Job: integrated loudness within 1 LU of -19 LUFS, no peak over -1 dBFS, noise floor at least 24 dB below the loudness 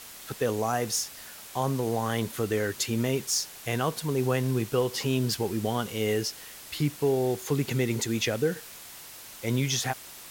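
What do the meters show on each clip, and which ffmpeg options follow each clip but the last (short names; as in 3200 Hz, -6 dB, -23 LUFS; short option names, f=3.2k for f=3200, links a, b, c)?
noise floor -45 dBFS; noise floor target -53 dBFS; loudness -28.5 LUFS; peak -14.0 dBFS; loudness target -19.0 LUFS
-> -af "afftdn=nr=8:nf=-45"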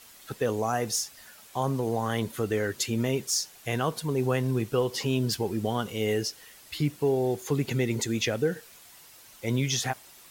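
noise floor -52 dBFS; noise floor target -53 dBFS
-> -af "afftdn=nr=6:nf=-52"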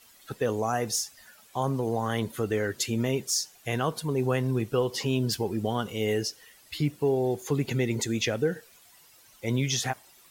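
noise floor -57 dBFS; loudness -28.5 LUFS; peak -14.5 dBFS; loudness target -19.0 LUFS
-> -af "volume=9.5dB"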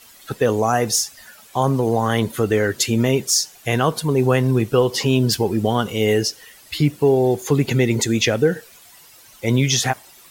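loudness -19.0 LUFS; peak -5.0 dBFS; noise floor -47 dBFS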